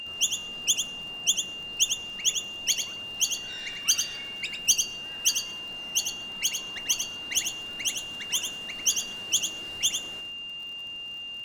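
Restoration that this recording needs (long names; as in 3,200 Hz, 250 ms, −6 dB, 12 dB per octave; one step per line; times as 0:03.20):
clipped peaks rebuilt −13 dBFS
click removal
notch filter 2,800 Hz, Q 30
echo removal 96 ms −6.5 dB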